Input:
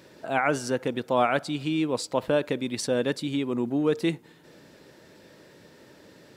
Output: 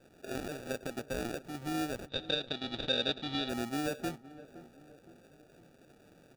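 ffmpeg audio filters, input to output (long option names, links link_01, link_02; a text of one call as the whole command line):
ffmpeg -i in.wav -filter_complex "[0:a]asettb=1/sr,asplit=3[link_01][link_02][link_03];[link_01]atrim=end=0.554[link_04];[link_02]atrim=start=0.55:end=1.06,asetpts=PTS-STARTPTS,afade=type=in:duration=0.004:curve=qsin,afade=type=out:start_time=0.506:duration=0.004:curve=qsin,equalizer=frequency=1500:width_type=o:width=1.3:gain=11.5[link_05];[link_03]atrim=start=1.056[link_06];[link_04][link_05]acrossfade=duration=0.004:curve1=hsin:curve2=qsin[link_07];[link_07][link_06]acrossfade=duration=0.004:curve1=qsin:curve2=hsin,alimiter=limit=-17dB:level=0:latency=1:release=368,acrusher=samples=42:mix=1:aa=0.000001,asplit=3[link_08][link_09][link_10];[link_08]afade=type=out:start_time=2.08:duration=0.02[link_11];[link_09]lowpass=frequency=3700:width_type=q:width=11,afade=type=in:start_time=2.08:duration=0.02,afade=type=out:start_time=3.48:duration=0.02[link_12];[link_10]afade=type=in:start_time=3.48:duration=0.02[link_13];[link_11][link_12][link_13]amix=inputs=3:normalize=0,asplit=2[link_14][link_15];[link_15]adelay=516,lowpass=frequency=1200:poles=1,volume=-16dB,asplit=2[link_16][link_17];[link_17]adelay=516,lowpass=frequency=1200:poles=1,volume=0.51,asplit=2[link_18][link_19];[link_19]adelay=516,lowpass=frequency=1200:poles=1,volume=0.51,asplit=2[link_20][link_21];[link_21]adelay=516,lowpass=frequency=1200:poles=1,volume=0.51,asplit=2[link_22][link_23];[link_23]adelay=516,lowpass=frequency=1200:poles=1,volume=0.51[link_24];[link_16][link_18][link_20][link_22][link_24]amix=inputs=5:normalize=0[link_25];[link_14][link_25]amix=inputs=2:normalize=0,volume=-8.5dB" out.wav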